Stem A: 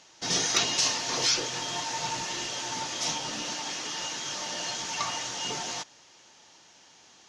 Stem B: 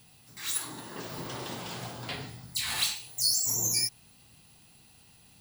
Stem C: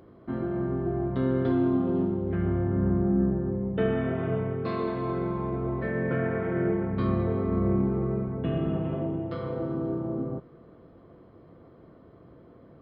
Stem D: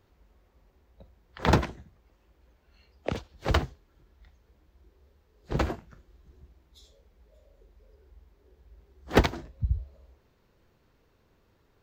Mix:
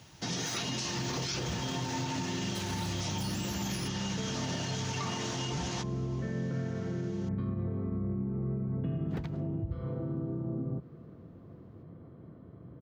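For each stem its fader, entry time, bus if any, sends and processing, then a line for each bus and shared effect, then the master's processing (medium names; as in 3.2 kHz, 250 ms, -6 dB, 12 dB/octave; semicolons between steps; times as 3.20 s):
-1.0 dB, 0.00 s, no bus, no send, none
-6.0 dB, 0.00 s, no bus, no send, compression 2:1, threshold -34 dBFS, peak gain reduction 7 dB
-5.0 dB, 0.40 s, bus A, no send, none
-6.5 dB, 0.00 s, bus A, no send, none
bus A: 0.0 dB, compression, threshold -38 dBFS, peak gain reduction 16.5 dB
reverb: none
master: high-pass 100 Hz 12 dB/octave; tone controls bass +14 dB, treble -4 dB; peak limiter -25.5 dBFS, peak gain reduction 12 dB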